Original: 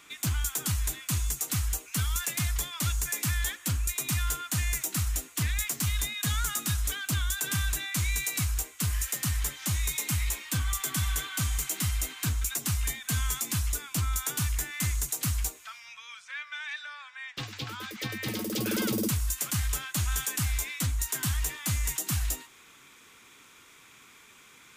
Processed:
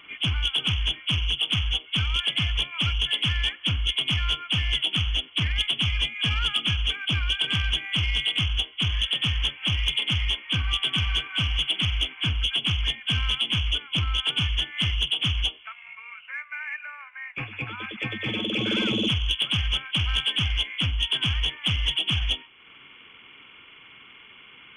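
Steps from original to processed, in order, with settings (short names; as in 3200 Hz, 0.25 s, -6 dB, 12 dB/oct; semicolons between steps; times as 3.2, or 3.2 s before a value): nonlinear frequency compression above 2100 Hz 4:1; soft clip -18 dBFS, distortion -20 dB; transient shaper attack 0 dB, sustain -5 dB; gain +3.5 dB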